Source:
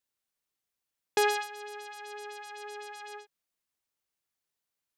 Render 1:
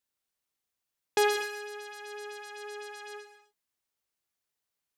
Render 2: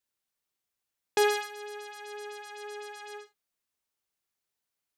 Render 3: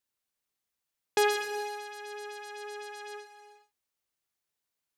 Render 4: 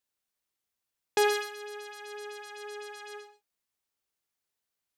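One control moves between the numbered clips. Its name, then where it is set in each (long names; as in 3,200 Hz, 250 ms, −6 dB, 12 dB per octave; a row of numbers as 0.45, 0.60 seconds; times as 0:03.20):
reverb whose tail is shaped and stops, gate: 280, 90, 470, 170 milliseconds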